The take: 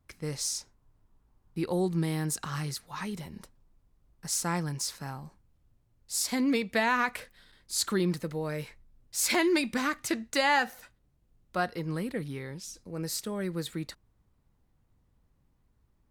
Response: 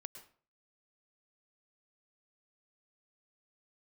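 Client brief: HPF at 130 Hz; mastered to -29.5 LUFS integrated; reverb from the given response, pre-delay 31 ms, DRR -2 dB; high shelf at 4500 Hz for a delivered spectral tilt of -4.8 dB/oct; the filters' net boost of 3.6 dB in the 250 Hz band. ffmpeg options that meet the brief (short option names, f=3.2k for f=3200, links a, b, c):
-filter_complex "[0:a]highpass=130,equalizer=f=250:t=o:g=5.5,highshelf=f=4.5k:g=-5.5,asplit=2[a][b];[1:a]atrim=start_sample=2205,adelay=31[c];[b][c]afir=irnorm=-1:irlink=0,volume=7dB[d];[a][d]amix=inputs=2:normalize=0,volume=-4dB"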